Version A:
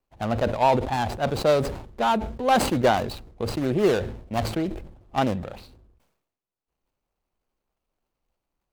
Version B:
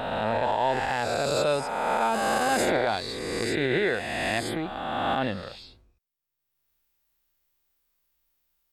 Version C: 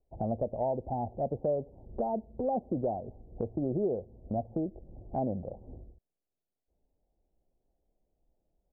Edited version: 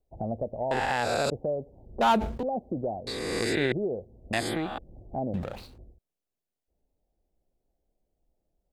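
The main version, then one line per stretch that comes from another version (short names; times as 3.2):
C
0.71–1.3 from B
2.01–2.43 from A
3.07–3.72 from B
4.33–4.78 from B
5.34–5.78 from A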